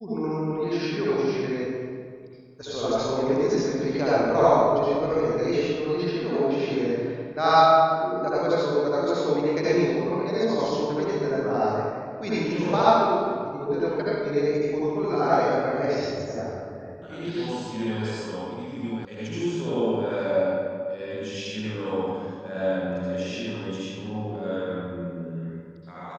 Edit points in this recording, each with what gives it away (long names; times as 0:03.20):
0:19.05: cut off before it has died away